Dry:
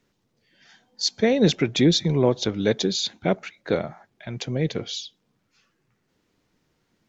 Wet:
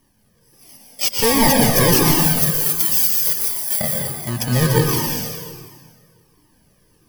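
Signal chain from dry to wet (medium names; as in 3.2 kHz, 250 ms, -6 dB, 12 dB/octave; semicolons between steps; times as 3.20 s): bit-reversed sample order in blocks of 32 samples; 2.12–3.81 s: differentiator; sine folder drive 13 dB, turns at -3.5 dBFS; plate-style reverb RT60 1.9 s, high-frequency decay 0.8×, pre-delay 105 ms, DRR -1.5 dB; Shepard-style flanger falling 1.4 Hz; trim -3.5 dB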